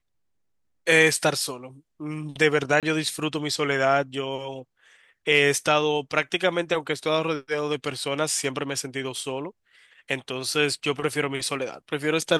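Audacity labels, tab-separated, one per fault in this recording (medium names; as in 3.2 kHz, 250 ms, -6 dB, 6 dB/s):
2.800000	2.830000	dropout 27 ms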